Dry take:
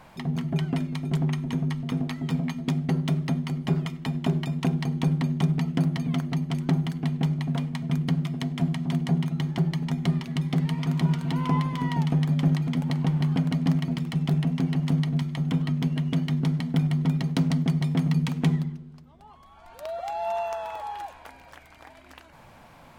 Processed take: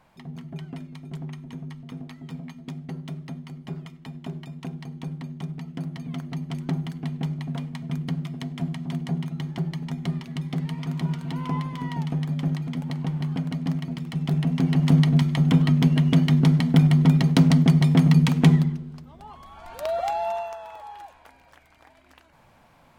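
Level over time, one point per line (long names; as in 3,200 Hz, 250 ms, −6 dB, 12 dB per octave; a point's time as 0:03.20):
0:05.64 −10 dB
0:06.50 −3.5 dB
0:14.00 −3.5 dB
0:14.97 +7 dB
0:20.05 +7 dB
0:20.58 −6 dB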